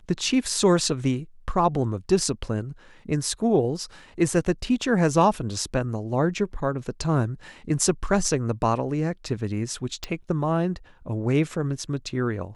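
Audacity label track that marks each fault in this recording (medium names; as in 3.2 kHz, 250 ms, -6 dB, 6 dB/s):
10.040000	10.040000	pop -16 dBFS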